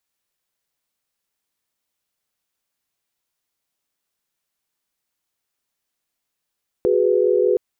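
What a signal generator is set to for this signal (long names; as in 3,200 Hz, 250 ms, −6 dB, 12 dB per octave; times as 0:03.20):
held notes F#4/G#4/B4 sine, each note −18.5 dBFS 0.72 s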